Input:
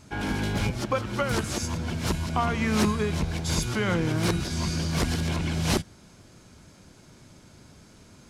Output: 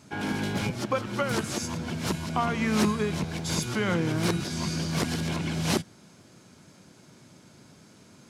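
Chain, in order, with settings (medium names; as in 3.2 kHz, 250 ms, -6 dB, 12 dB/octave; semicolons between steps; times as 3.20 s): Chebyshev high-pass 150 Hz, order 2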